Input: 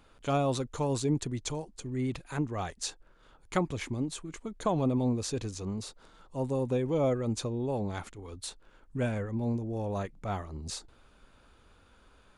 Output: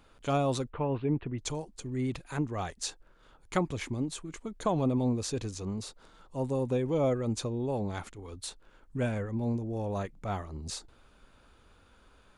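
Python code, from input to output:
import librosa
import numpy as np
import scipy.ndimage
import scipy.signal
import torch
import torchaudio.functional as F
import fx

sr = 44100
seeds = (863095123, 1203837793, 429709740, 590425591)

y = fx.ellip_lowpass(x, sr, hz=2800.0, order=4, stop_db=60, at=(0.69, 1.38), fade=0.02)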